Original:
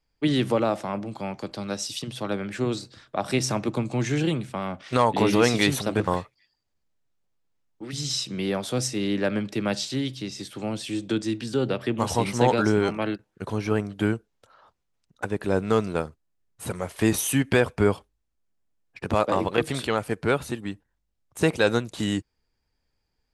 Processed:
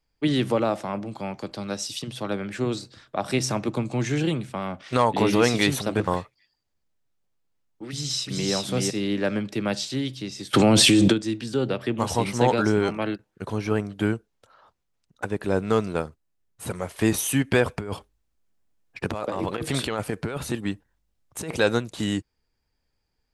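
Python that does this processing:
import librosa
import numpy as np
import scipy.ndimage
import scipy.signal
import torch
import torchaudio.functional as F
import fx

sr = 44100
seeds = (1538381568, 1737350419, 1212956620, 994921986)

y = fx.echo_throw(x, sr, start_s=7.89, length_s=0.63, ms=380, feedback_pct=15, wet_db=-1.5)
y = fx.env_flatten(y, sr, amount_pct=100, at=(10.53, 11.12), fade=0.02)
y = fx.over_compress(y, sr, threshold_db=-28.0, ratio=-1.0, at=(17.65, 21.6))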